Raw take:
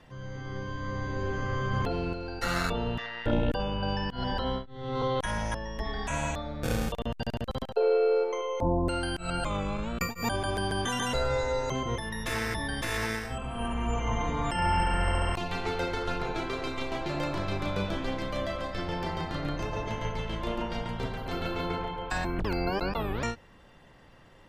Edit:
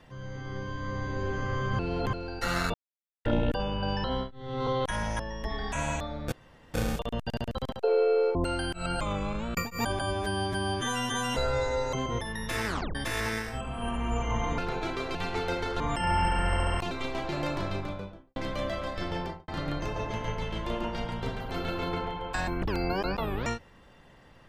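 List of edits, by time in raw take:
0:01.79–0:02.13: reverse
0:02.74–0:03.25: silence
0:04.04–0:04.39: remove
0:06.67: splice in room tone 0.42 s
0:08.28–0:08.79: remove
0:10.45–0:11.12: time-stretch 2×
0:12.43: tape stop 0.29 s
0:14.35–0:15.46: swap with 0:16.11–0:16.68
0:17.35–0:18.13: fade out and dull
0:18.95–0:19.25: fade out and dull

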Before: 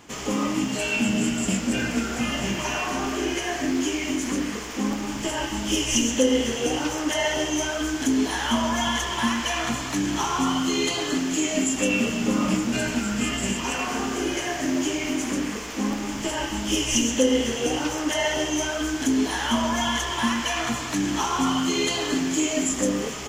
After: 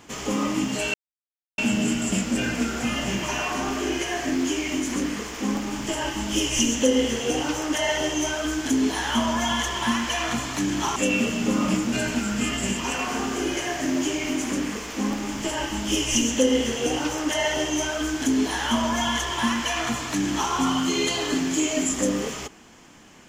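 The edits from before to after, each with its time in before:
0:00.94: splice in silence 0.64 s
0:10.32–0:11.76: remove

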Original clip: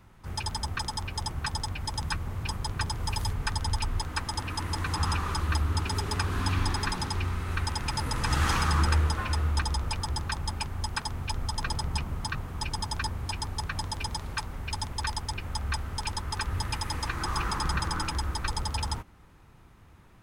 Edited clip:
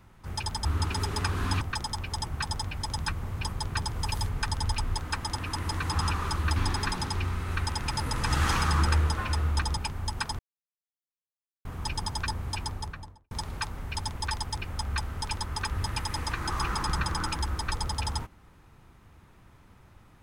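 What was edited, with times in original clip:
0:05.60–0:06.56: move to 0:00.65
0:09.77–0:10.53: remove
0:11.15–0:12.41: silence
0:13.37–0:14.07: fade out and dull

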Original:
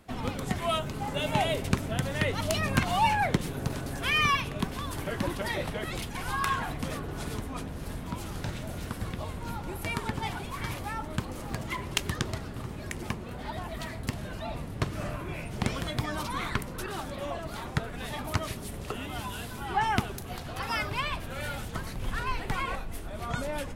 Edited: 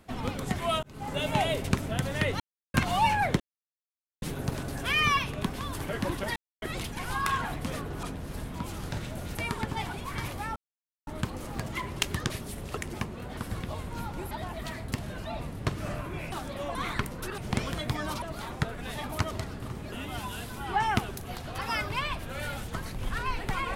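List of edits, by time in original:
0:00.83–0:01.14: fade in
0:02.40–0:02.74: silence
0:03.40: splice in silence 0.82 s
0:05.54–0:05.80: silence
0:07.21–0:07.55: remove
0:08.87–0:09.81: move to 0:13.46
0:11.02: splice in silence 0.51 s
0:12.25–0:12.86: swap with 0:18.46–0:18.93
0:15.47–0:16.31: swap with 0:16.94–0:17.37

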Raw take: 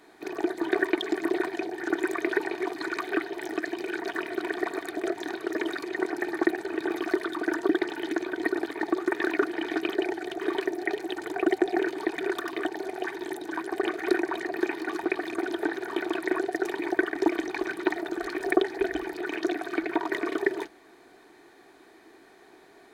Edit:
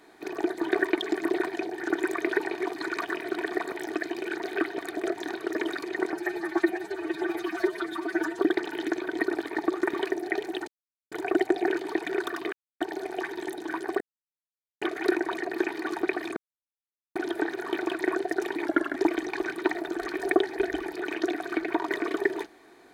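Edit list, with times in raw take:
0:03.02–0:03.34: swap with 0:04.08–0:04.78
0:06.13–0:07.64: time-stretch 1.5×
0:09.18–0:10.49: remove
0:11.23: splice in silence 0.44 s
0:12.64: splice in silence 0.28 s
0:13.84: splice in silence 0.81 s
0:15.39: splice in silence 0.79 s
0:16.89–0:17.17: play speed 92%

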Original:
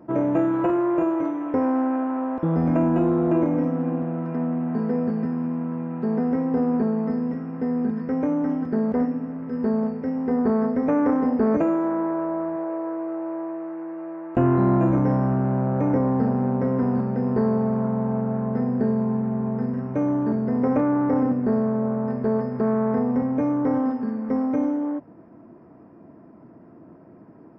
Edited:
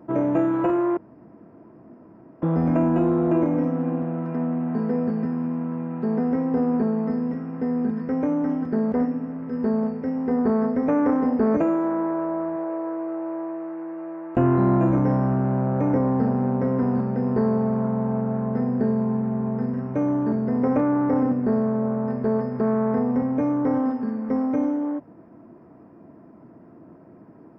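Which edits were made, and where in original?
0:00.97–0:02.42: fill with room tone

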